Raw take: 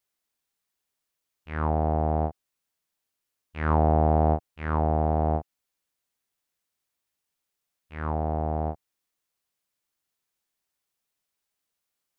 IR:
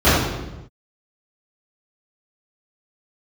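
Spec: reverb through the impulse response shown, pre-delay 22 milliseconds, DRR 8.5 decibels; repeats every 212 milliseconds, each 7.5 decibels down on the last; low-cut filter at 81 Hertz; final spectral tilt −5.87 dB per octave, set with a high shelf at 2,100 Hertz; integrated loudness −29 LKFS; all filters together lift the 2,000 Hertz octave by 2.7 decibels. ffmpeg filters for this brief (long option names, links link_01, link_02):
-filter_complex "[0:a]highpass=81,equalizer=frequency=2000:width_type=o:gain=6,highshelf=frequency=2100:gain=-4.5,aecho=1:1:212|424|636|848|1060:0.422|0.177|0.0744|0.0312|0.0131,asplit=2[link_01][link_02];[1:a]atrim=start_sample=2205,adelay=22[link_03];[link_02][link_03]afir=irnorm=-1:irlink=0,volume=-35dB[link_04];[link_01][link_04]amix=inputs=2:normalize=0,volume=-4.5dB"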